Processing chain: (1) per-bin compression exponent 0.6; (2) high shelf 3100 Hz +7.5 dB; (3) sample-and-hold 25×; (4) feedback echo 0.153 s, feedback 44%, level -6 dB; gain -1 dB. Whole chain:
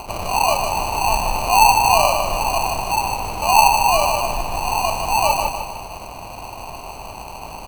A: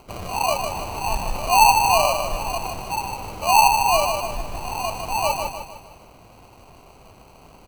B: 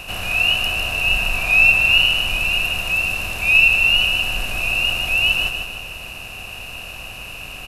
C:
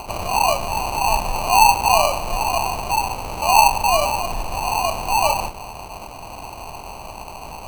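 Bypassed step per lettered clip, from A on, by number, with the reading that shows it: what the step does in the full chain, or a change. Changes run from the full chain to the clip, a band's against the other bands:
1, momentary loudness spread change -5 LU; 3, 2 kHz band +16.5 dB; 4, echo-to-direct -5.0 dB to none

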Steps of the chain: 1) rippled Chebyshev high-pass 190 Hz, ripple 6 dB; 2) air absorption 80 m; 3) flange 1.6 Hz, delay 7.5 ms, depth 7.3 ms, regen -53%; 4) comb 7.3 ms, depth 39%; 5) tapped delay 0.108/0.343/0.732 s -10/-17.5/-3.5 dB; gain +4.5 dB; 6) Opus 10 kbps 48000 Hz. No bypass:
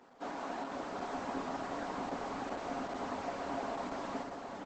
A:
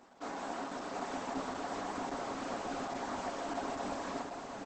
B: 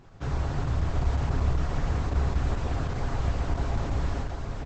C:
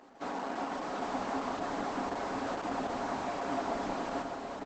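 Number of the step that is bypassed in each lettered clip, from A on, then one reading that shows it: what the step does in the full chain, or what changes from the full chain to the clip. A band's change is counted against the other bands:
2, 8 kHz band +5.5 dB; 1, 125 Hz band +23.0 dB; 3, loudness change +4.0 LU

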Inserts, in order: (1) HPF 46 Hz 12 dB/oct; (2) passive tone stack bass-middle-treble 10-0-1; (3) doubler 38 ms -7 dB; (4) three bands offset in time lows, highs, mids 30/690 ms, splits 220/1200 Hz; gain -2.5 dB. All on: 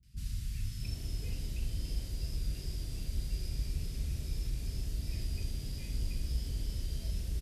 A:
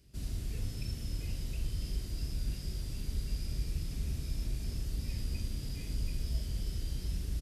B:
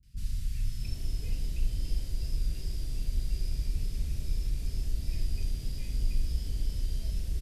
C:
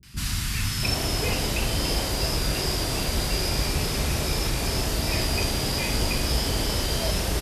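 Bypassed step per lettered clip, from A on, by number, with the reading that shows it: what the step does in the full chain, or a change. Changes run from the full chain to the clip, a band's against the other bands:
4, echo-to-direct 19.5 dB to none; 1, 125 Hz band +2.0 dB; 2, 125 Hz band -14.0 dB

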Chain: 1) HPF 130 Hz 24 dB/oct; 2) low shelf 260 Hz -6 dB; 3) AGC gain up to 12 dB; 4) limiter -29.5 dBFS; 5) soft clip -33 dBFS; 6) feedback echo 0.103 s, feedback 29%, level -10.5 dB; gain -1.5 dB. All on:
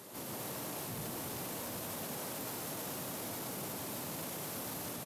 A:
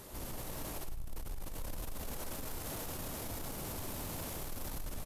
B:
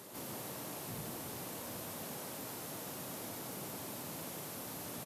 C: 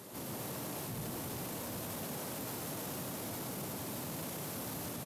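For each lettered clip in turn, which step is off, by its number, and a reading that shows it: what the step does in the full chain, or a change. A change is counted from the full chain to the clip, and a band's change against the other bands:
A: 1, 125 Hz band +5.0 dB; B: 3, crest factor change +2.0 dB; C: 2, 125 Hz band +4.0 dB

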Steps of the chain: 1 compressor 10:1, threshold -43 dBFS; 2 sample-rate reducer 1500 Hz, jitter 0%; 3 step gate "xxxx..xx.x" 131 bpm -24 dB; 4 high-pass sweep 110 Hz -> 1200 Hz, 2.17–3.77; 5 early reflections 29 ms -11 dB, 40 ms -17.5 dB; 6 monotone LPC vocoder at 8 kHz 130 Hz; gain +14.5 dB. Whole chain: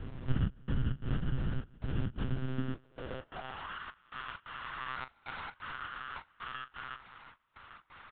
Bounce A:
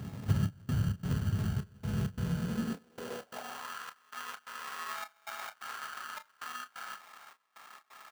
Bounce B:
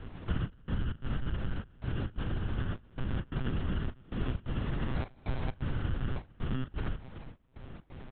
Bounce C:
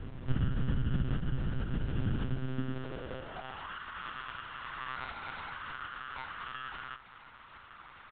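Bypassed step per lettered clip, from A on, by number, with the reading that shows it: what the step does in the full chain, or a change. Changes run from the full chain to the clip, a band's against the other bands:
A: 6, 250 Hz band +2.5 dB; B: 4, 1 kHz band -6.5 dB; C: 3, crest factor change -1.5 dB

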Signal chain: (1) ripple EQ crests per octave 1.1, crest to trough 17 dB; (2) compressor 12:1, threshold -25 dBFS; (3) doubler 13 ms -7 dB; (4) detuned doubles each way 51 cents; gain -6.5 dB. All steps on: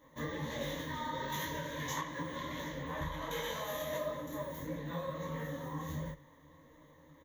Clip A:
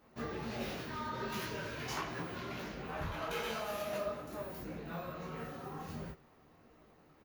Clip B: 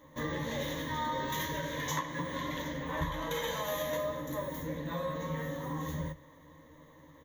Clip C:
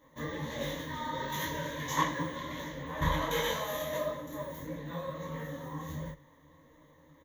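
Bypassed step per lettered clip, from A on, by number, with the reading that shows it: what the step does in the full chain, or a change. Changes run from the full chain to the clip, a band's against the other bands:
1, 8 kHz band -2.5 dB; 4, crest factor change +1.5 dB; 2, mean gain reduction 2.5 dB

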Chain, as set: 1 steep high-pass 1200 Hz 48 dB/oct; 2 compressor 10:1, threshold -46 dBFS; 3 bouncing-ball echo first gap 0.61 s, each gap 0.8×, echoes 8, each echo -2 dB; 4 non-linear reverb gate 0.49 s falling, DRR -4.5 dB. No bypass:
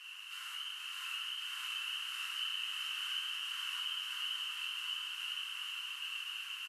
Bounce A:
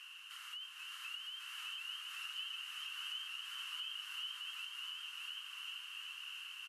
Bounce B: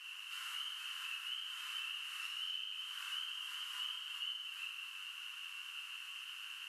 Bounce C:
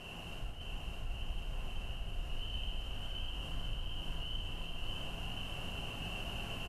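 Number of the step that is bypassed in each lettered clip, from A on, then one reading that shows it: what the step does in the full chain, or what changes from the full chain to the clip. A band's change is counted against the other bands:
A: 4, echo-to-direct 9.5 dB to 2.0 dB; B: 3, echo-to-direct 9.5 dB to 4.5 dB; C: 1, 1 kHz band +7.0 dB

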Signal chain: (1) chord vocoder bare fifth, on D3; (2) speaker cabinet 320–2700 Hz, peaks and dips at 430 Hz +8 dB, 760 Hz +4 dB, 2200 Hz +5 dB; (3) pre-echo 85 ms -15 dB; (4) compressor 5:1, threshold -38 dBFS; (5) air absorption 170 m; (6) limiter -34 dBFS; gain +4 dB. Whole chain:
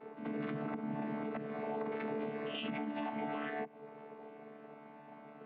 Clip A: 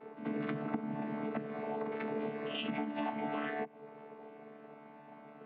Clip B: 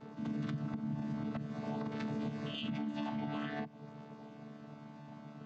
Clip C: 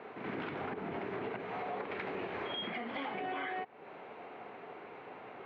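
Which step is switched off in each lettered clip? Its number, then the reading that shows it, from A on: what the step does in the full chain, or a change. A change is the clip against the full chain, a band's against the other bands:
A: 6, crest factor change +7.5 dB; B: 2, momentary loudness spread change -2 LU; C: 1, 250 Hz band -7.5 dB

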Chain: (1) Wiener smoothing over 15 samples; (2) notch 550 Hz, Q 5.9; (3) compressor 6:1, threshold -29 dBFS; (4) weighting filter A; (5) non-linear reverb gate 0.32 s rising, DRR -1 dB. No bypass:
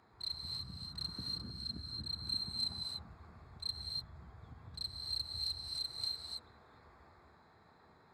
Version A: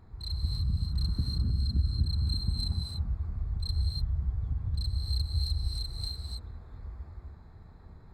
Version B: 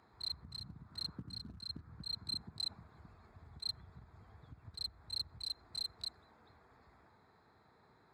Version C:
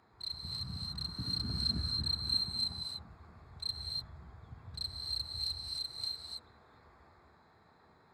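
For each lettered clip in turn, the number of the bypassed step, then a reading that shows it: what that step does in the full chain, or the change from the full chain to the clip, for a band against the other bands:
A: 4, 125 Hz band +19.5 dB; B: 5, momentary loudness spread change +3 LU; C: 3, mean gain reduction 3.0 dB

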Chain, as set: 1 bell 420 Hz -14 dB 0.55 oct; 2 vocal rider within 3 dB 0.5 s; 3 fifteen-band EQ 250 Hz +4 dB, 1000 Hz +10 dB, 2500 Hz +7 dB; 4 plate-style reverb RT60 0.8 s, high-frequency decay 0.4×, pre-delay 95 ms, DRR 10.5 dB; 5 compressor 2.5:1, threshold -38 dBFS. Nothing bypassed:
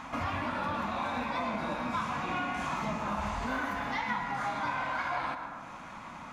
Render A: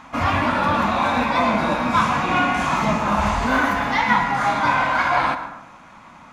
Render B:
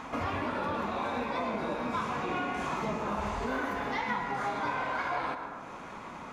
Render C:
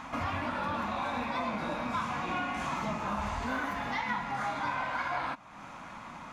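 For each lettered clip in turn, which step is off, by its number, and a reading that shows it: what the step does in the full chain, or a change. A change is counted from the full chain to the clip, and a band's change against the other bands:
5, mean gain reduction 11.5 dB; 1, 500 Hz band +4.5 dB; 4, momentary loudness spread change +3 LU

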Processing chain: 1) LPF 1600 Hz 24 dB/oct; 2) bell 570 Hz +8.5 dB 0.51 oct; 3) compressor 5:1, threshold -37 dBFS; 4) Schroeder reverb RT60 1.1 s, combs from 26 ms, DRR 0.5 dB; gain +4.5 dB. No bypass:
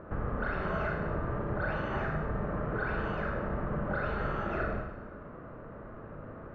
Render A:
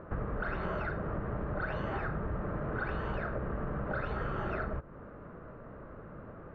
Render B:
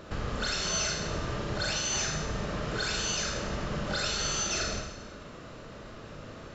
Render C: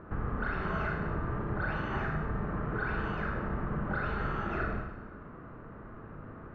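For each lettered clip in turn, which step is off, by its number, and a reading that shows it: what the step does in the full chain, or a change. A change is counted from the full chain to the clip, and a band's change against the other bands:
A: 4, loudness change -2.5 LU; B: 1, 4 kHz band +25.5 dB; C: 2, 500 Hz band -4.5 dB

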